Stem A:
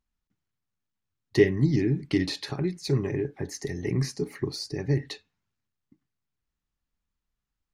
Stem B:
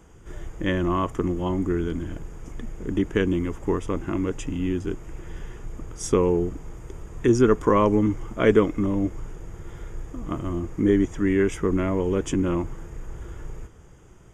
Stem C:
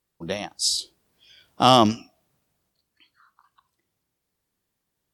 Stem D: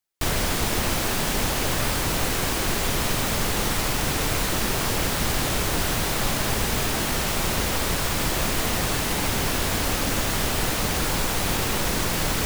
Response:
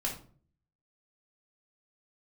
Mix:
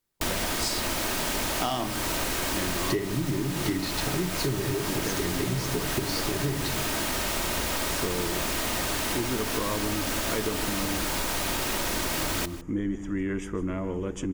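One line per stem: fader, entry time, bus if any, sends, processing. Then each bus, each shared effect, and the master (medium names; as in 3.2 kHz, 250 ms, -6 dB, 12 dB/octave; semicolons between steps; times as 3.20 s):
+2.5 dB, 1.55 s, send -6.5 dB, no echo send, none
-7.5 dB, 1.90 s, send -17 dB, echo send -12.5 dB, band-stop 400 Hz
-8.0 dB, 0.00 s, send -4.5 dB, no echo send, none
-1.0 dB, 0.00 s, no send, echo send -19.5 dB, bass shelf 140 Hz -7 dB; comb 3.2 ms, depth 31%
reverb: on, RT60 0.45 s, pre-delay 3 ms
echo: delay 155 ms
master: compression 12:1, threshold -24 dBFS, peak gain reduction 18 dB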